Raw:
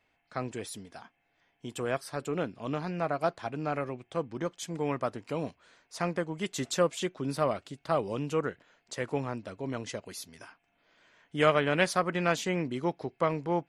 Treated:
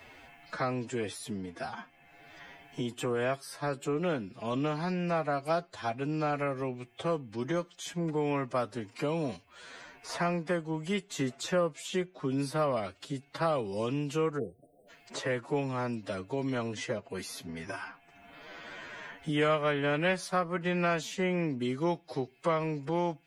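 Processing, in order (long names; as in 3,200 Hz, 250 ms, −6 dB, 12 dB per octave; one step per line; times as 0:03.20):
time-frequency box erased 0:08.46–0:08.76, 790–8,000 Hz
phase-vocoder stretch with locked phases 1.7×
multiband upward and downward compressor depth 70%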